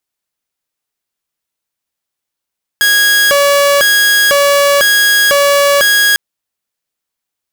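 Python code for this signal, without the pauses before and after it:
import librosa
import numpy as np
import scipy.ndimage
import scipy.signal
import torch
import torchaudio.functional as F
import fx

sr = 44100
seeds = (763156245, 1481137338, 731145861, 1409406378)

y = fx.siren(sr, length_s=3.35, kind='hi-lo', low_hz=568.0, high_hz=1650.0, per_s=1.0, wave='saw', level_db=-4.5)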